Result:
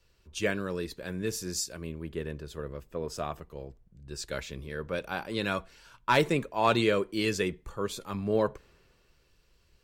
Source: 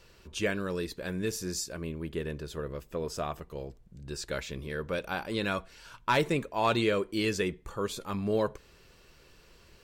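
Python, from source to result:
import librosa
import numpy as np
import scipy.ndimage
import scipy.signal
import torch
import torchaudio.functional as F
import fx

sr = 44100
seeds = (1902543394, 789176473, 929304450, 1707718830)

y = fx.band_widen(x, sr, depth_pct=40)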